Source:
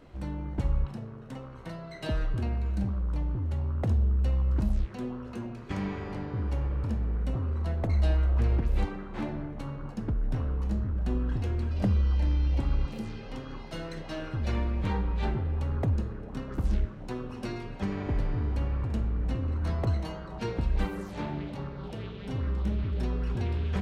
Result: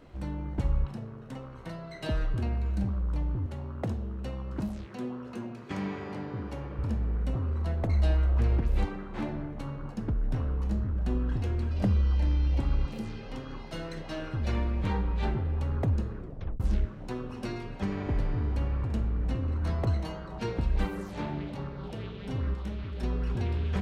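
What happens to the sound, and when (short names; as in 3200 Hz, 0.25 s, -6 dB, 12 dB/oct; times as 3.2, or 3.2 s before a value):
3.46–6.79 HPF 130 Hz
16.18 tape stop 0.42 s
22.54–23.03 low shelf 460 Hz -7 dB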